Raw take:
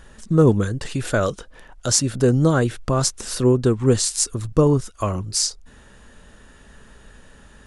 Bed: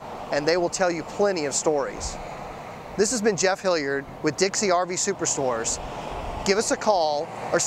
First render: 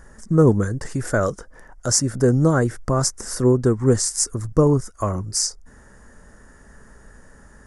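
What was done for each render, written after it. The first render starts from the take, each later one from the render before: high-order bell 3.2 kHz -15 dB 1 oct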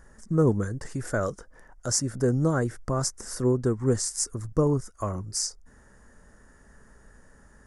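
trim -7 dB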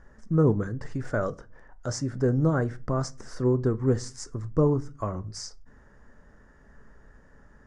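distance through air 150 m; simulated room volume 200 m³, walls furnished, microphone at 0.3 m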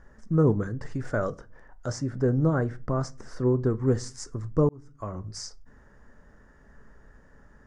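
1.92–3.70 s: treble shelf 3.7 kHz -6 dB; 4.69–5.32 s: fade in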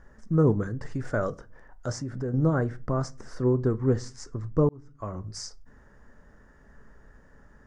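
1.93–2.34 s: compression 2.5:1, threshold -30 dBFS; 3.78–5.04 s: distance through air 68 m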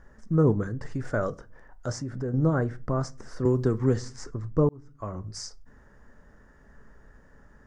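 3.45–4.31 s: three bands compressed up and down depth 70%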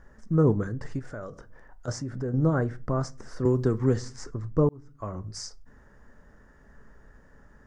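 0.99–1.88 s: compression 2.5:1, threshold -39 dBFS

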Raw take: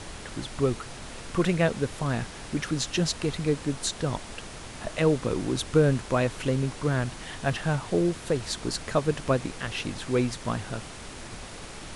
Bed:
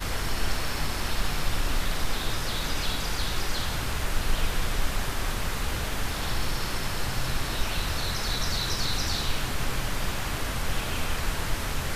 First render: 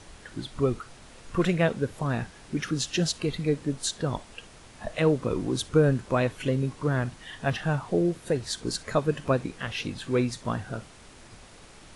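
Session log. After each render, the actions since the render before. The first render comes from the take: noise print and reduce 9 dB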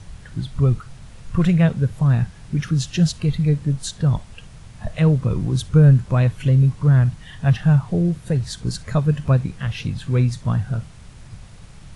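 resonant low shelf 210 Hz +12 dB, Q 1.5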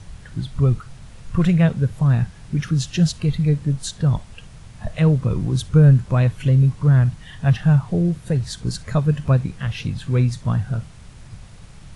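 no audible change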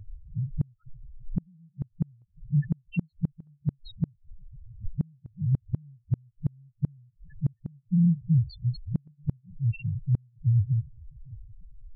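loudest bins only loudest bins 2; inverted gate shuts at -15 dBFS, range -38 dB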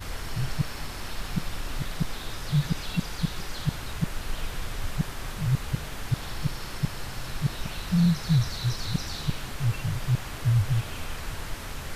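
add bed -6.5 dB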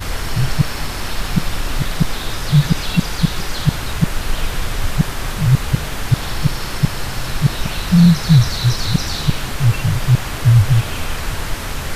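trim +12 dB; peak limiter -1 dBFS, peak gain reduction 1 dB

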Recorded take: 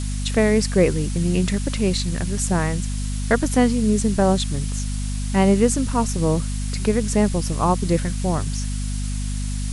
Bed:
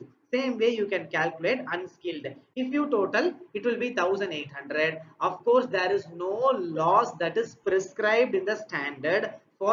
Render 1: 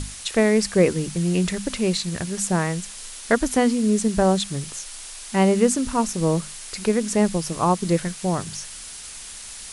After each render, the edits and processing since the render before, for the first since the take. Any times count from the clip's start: hum notches 50/100/150/200/250 Hz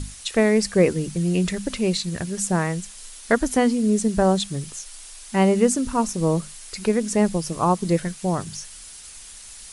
noise reduction 6 dB, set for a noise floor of -38 dBFS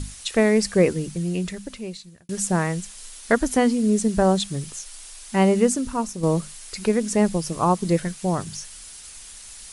0.74–2.29 s: fade out; 5.56–6.23 s: fade out, to -6.5 dB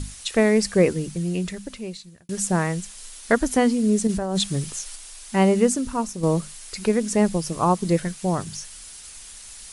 4.07–4.96 s: compressor with a negative ratio -23 dBFS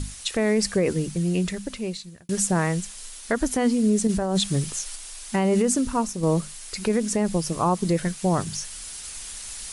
gain riding within 5 dB 2 s; peak limiter -12.5 dBFS, peak gain reduction 9 dB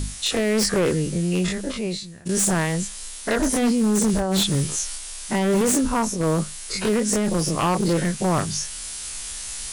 every event in the spectrogram widened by 60 ms; wavefolder -14 dBFS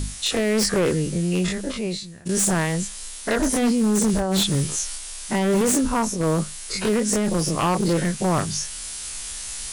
no audible change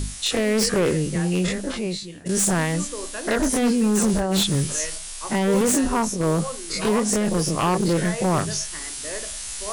add bed -9.5 dB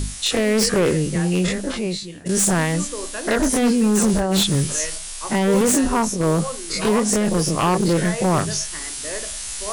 trim +2.5 dB

